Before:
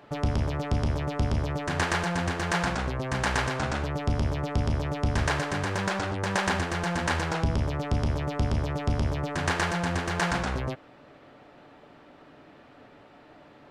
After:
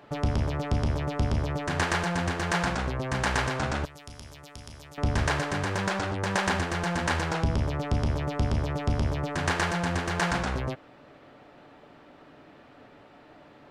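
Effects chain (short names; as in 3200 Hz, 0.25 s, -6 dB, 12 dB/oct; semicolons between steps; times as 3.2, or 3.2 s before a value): 3.85–4.98 pre-emphasis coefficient 0.9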